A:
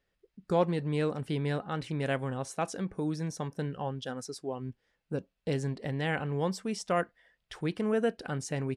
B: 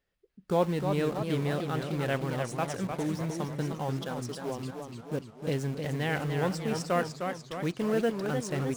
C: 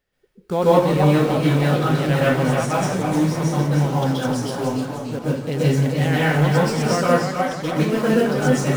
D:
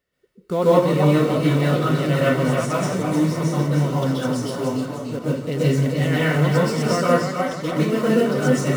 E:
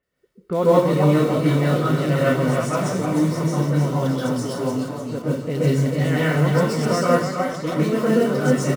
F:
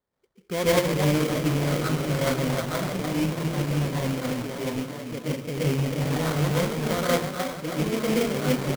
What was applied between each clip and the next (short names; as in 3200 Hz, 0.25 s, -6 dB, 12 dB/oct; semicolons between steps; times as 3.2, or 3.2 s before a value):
in parallel at -8 dB: bit-crush 6-bit; on the sum: warbling echo 0.301 s, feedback 57%, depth 184 cents, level -6 dB; gain -2.5 dB
plate-style reverb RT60 0.53 s, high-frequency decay 0.8×, pre-delay 0.115 s, DRR -7 dB; gain +4 dB
notch comb 810 Hz
bands offset in time lows, highs 30 ms, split 2900 Hz
rattling part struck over -23 dBFS, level -18 dBFS; sample-rate reducer 2700 Hz, jitter 20%; gain -6 dB